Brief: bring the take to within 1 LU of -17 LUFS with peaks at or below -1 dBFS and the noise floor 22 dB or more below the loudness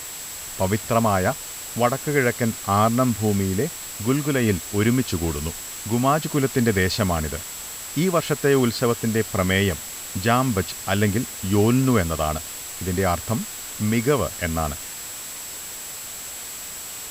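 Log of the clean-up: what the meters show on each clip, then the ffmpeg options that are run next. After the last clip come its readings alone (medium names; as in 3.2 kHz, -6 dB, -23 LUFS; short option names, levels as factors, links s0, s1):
steady tone 7.7 kHz; tone level -36 dBFS; noise floor -35 dBFS; noise floor target -45 dBFS; loudness -23.0 LUFS; peak level -6.5 dBFS; loudness target -17.0 LUFS
-> -af "bandreject=f=7700:w=30"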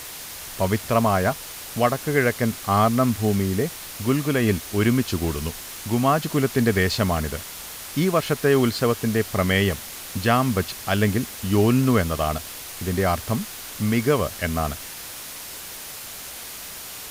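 steady tone not found; noise floor -37 dBFS; noise floor target -45 dBFS
-> -af "afftdn=nr=8:nf=-37"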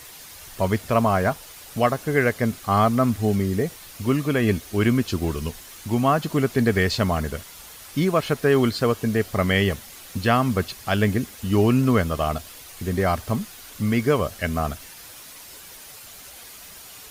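noise floor -43 dBFS; noise floor target -45 dBFS
-> -af "afftdn=nr=6:nf=-43"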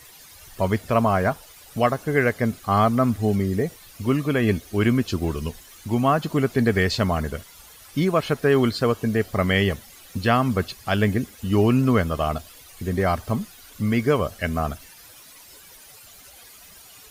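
noise floor -47 dBFS; loudness -22.5 LUFS; peak level -7.0 dBFS; loudness target -17.0 LUFS
-> -af "volume=1.88"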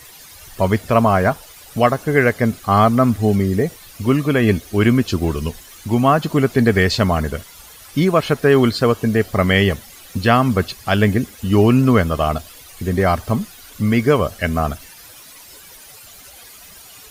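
loudness -17.0 LUFS; peak level -1.5 dBFS; noise floor -42 dBFS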